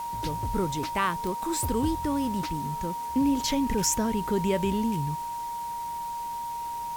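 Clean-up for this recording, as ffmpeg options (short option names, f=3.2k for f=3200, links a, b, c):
-af "adeclick=t=4,bandreject=f=940:w=30,afwtdn=0.004"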